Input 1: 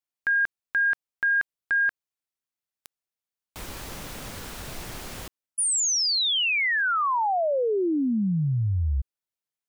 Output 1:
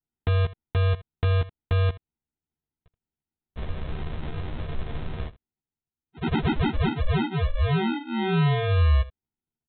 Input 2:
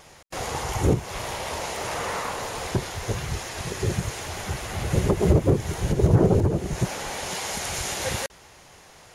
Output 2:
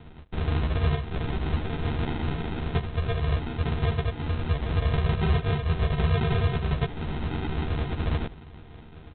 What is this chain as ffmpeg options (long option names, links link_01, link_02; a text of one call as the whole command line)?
ffmpeg -i in.wav -filter_complex "[0:a]aecho=1:1:1.9:0.95,acrossover=split=200[link_01][link_02];[link_01]acontrast=31[link_03];[link_03][link_02]amix=inputs=2:normalize=0,alimiter=limit=-10dB:level=0:latency=1:release=330,acompressor=threshold=-23dB:ratio=3:attack=9.3:release=185:knee=6:detection=rms,aresample=8000,acrusher=samples=14:mix=1:aa=0.000001,aresample=44100,aecho=1:1:13|78:0.668|0.141" out.wav